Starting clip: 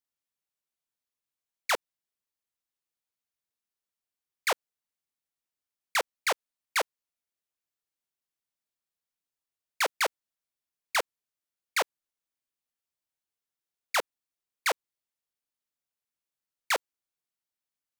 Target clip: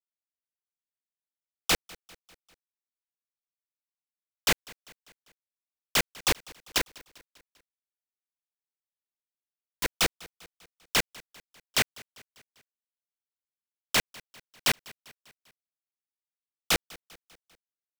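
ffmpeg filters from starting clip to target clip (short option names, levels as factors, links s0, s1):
-filter_complex "[0:a]asettb=1/sr,asplit=3[s0][s1][s2];[s0]atrim=end=6.784[s3];[s1]atrim=start=6.78:end=9.87,asetpts=PTS-STARTPTS,afade=t=in:d=0.004:c=qsin,afade=t=out:st=3.086:d=0.004:c=qsin,lowpass=f=1400:p=1[s4];[s2]atrim=start=9.866[s5];[s3][s4]acrossfade=d=0.004:c1=hsin:c2=qsin[s6];[s6][s5]acrossfade=d=0.004:c1=qsin:c2=hsin,acrusher=bits=3:mix=0:aa=0.000001,aecho=1:1:198|396|594|792:0.0708|0.0389|0.0214|0.0118,aeval=exprs='val(0)*sgn(sin(2*PI*1000*n/s))':c=same"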